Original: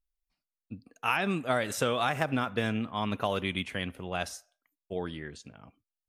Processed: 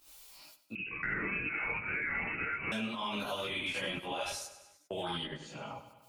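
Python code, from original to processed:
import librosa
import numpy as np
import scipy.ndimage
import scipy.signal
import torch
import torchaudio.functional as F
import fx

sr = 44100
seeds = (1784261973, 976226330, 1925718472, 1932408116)

y = fx.highpass(x, sr, hz=880.0, slope=6)
y = fx.peak_eq(y, sr, hz=1800.0, db=-6.5, octaves=0.75)
y = fx.level_steps(y, sr, step_db=24)
y = fx.chorus_voices(y, sr, voices=4, hz=0.67, base_ms=17, depth_ms=3.1, mix_pct=60)
y = fx.echo_feedback(y, sr, ms=99, feedback_pct=42, wet_db=-15.0)
y = fx.rev_gated(y, sr, seeds[0], gate_ms=100, shape='rising', drr_db=-7.5)
y = fx.freq_invert(y, sr, carrier_hz=2800, at=(0.75, 2.72))
y = fx.band_squash(y, sr, depth_pct=100)
y = F.gain(torch.from_numpy(y), 6.5).numpy()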